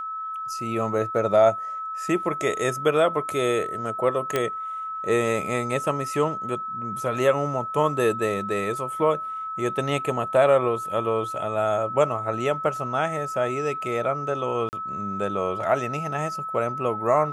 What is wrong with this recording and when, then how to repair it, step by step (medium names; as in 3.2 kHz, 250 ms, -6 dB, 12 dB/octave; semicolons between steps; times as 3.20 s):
whine 1.3 kHz -29 dBFS
4.36 s: pop -9 dBFS
14.69–14.73 s: dropout 39 ms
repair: de-click; band-stop 1.3 kHz, Q 30; interpolate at 14.69 s, 39 ms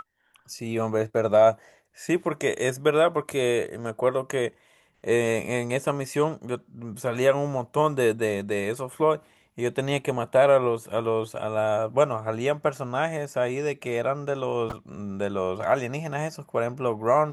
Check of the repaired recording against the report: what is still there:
nothing left